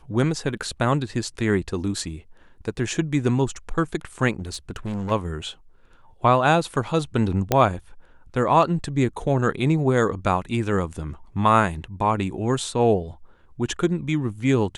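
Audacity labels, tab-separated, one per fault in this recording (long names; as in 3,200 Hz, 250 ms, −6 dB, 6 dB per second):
4.390000	5.120000	clipping −24.5 dBFS
7.520000	7.520000	click −5 dBFS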